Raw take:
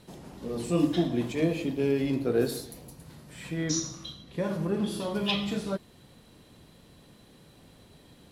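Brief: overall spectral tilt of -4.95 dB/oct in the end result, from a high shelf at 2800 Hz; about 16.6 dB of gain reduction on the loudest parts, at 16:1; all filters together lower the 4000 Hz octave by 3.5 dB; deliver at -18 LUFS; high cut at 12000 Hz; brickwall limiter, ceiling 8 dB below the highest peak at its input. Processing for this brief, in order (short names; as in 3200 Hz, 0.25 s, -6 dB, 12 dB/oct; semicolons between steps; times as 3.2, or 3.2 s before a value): LPF 12000 Hz; high shelf 2800 Hz +4.5 dB; bell 4000 Hz -8.5 dB; compressor 16:1, threshold -36 dBFS; gain +25.5 dB; limiter -8.5 dBFS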